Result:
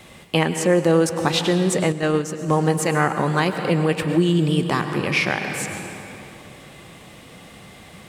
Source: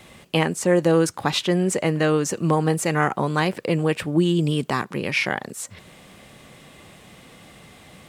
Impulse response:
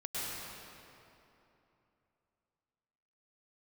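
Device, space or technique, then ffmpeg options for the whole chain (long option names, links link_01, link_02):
ducked reverb: -filter_complex "[0:a]asplit=3[link_01][link_02][link_03];[1:a]atrim=start_sample=2205[link_04];[link_02][link_04]afir=irnorm=-1:irlink=0[link_05];[link_03]apad=whole_len=356678[link_06];[link_05][link_06]sidechaincompress=threshold=-21dB:ratio=8:attack=37:release=562,volume=-6dB[link_07];[link_01][link_07]amix=inputs=2:normalize=0,asettb=1/sr,asplit=3[link_08][link_09][link_10];[link_08]atrim=end=1.924[link_11];[link_09]atrim=start=1.92:end=2.58,asetpts=PTS-STARTPTS,afade=type=in:duration=0.004:curve=qsin,afade=type=out:start_time=0.656:duration=0.004:curve=qsin,agate=range=-8dB:threshold=-17dB:ratio=16:detection=peak[link_12];[link_10]atrim=start=2.576[link_13];[link_11][link_12]acrossfade=duration=0.004:curve1=hsin:curve2=qsin[link_14];[link_14][link_13]acrossfade=duration=0.004:curve1=qsin:curve2=hsin"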